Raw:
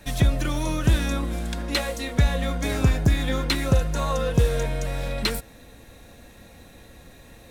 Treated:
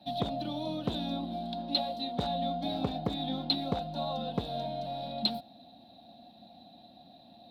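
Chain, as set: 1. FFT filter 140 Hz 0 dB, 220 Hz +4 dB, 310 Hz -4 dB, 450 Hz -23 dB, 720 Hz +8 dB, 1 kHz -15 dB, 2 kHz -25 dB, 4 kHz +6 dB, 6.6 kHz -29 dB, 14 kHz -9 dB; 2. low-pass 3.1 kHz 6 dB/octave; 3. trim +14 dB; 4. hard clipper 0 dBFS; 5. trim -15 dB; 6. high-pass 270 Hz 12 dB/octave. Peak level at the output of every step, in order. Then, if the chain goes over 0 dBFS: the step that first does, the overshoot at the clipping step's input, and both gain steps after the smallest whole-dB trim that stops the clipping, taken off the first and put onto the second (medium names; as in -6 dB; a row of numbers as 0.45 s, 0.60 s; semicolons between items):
-6.5 dBFS, -6.5 dBFS, +7.5 dBFS, 0.0 dBFS, -15.0 dBFS, -14.5 dBFS; step 3, 7.5 dB; step 3 +6 dB, step 5 -7 dB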